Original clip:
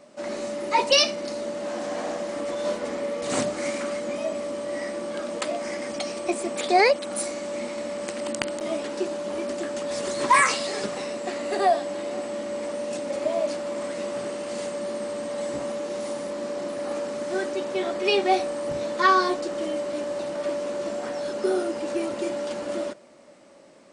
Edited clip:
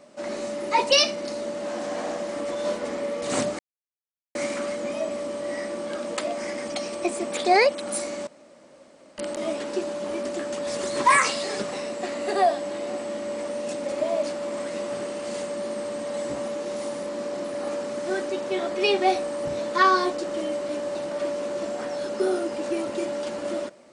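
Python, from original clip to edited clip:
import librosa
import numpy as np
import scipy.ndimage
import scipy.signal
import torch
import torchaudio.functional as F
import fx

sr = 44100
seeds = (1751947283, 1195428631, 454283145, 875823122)

y = fx.edit(x, sr, fx.insert_silence(at_s=3.59, length_s=0.76),
    fx.room_tone_fill(start_s=7.51, length_s=0.91), tone=tone)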